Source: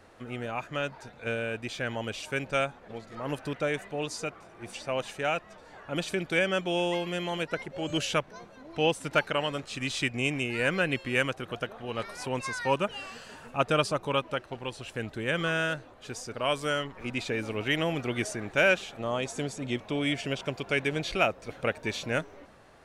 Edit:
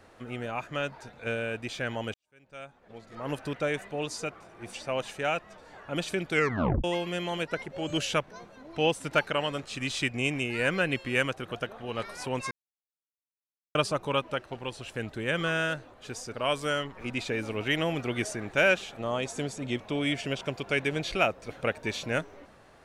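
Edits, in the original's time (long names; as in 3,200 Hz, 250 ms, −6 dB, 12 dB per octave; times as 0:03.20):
0:02.14–0:03.30: fade in quadratic
0:06.33: tape stop 0.51 s
0:12.51–0:13.75: silence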